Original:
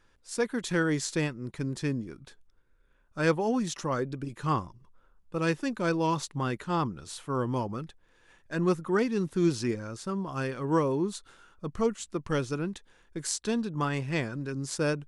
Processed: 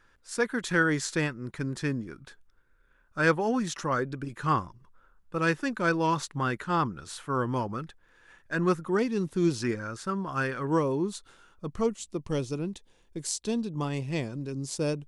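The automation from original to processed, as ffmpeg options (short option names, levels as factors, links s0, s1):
-af "asetnsamples=n=441:p=0,asendcmd='8.83 equalizer g -2;9.62 equalizer g 8.5;10.67 equalizer g -1.5;11.89 equalizer g -11.5',equalizer=f=1500:t=o:w=0.88:g=7"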